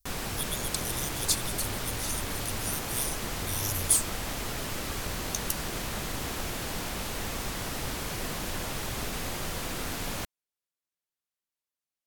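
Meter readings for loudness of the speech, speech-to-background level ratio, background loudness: −31.5 LKFS, 2.0 dB, −33.5 LKFS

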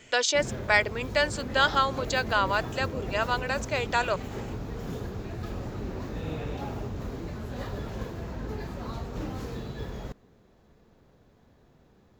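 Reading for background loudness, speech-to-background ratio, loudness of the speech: −36.5 LKFS, 10.0 dB, −26.5 LKFS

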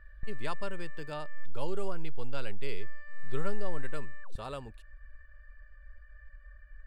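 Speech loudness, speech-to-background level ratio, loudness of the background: −41.0 LKFS, 10.5 dB, −51.5 LKFS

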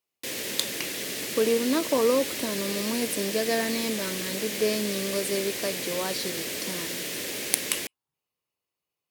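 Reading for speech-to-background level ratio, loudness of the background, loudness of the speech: 2.0 dB, −31.0 LKFS, −29.0 LKFS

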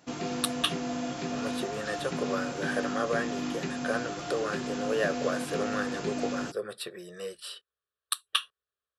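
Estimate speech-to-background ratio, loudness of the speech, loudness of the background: 1.0 dB, −33.5 LKFS, −34.5 LKFS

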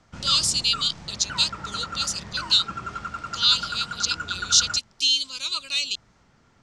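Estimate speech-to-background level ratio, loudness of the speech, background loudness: 11.5 dB, −22.5 LKFS, −34.0 LKFS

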